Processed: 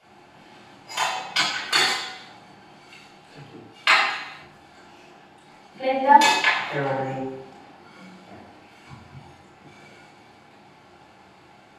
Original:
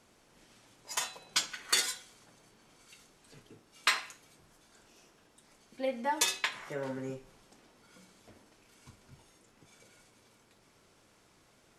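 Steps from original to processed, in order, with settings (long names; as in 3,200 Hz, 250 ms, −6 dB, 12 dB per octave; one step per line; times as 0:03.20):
parametric band 800 Hz +15 dB 0.32 octaves
convolution reverb RT60 0.85 s, pre-delay 22 ms, DRR −6.5 dB
level −4 dB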